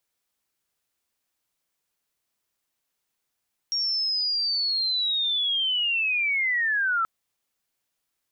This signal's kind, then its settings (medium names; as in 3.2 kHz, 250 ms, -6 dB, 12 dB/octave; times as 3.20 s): sweep linear 5.6 kHz -> 1.3 kHz -23 dBFS -> -21 dBFS 3.33 s